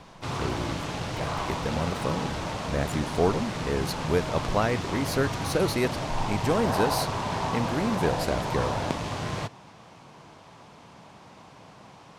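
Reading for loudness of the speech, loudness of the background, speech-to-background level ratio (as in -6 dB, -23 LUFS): -30.0 LUFS, -31.0 LUFS, 1.0 dB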